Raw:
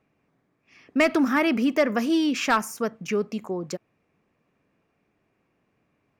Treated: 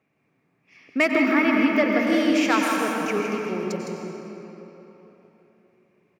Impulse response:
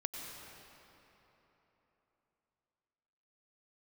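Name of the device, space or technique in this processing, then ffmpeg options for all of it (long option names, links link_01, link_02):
PA in a hall: -filter_complex "[0:a]highpass=100,equalizer=frequency=2200:width_type=o:width=0.38:gain=5.5,aecho=1:1:161:0.473[link_01];[1:a]atrim=start_sample=2205[link_02];[link_01][link_02]afir=irnorm=-1:irlink=0,asettb=1/sr,asplit=3[link_03][link_04][link_05];[link_03]atrim=end=1.114[link_06];[link_04]atrim=start=1.11:end=2.07,asetpts=PTS-STARTPTS,afade=type=in:duration=0.004:curve=qsin,afade=type=out:start_time=0.956:duration=0.004:curve=qsin,equalizer=frequency=9100:width_type=o:width=1.3:gain=-10.5[link_07];[link_05]atrim=start=2.066[link_08];[link_06][link_07]acrossfade=duration=0.004:curve1=hsin:curve2=qsin[link_09];[link_09][link_08]acrossfade=duration=0.004:curve1=qsin:curve2=hsin"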